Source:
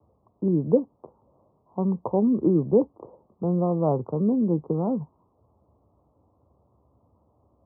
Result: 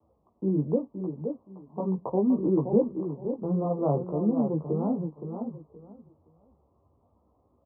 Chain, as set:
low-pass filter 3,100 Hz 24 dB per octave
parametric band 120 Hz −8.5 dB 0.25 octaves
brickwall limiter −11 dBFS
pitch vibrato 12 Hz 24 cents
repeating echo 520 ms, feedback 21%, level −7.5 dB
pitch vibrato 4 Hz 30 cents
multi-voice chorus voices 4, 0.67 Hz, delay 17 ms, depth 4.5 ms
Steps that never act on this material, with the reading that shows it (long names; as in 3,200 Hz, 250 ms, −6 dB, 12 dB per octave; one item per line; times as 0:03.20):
low-pass filter 3,100 Hz: nothing at its input above 1,100 Hz